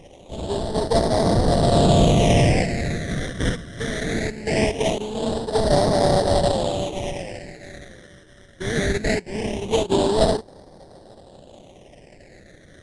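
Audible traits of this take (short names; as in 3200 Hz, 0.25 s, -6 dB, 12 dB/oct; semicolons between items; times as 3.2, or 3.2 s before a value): aliases and images of a low sample rate 1300 Hz, jitter 20%; phasing stages 12, 0.21 Hz, lowest notch 800–2500 Hz; Nellymoser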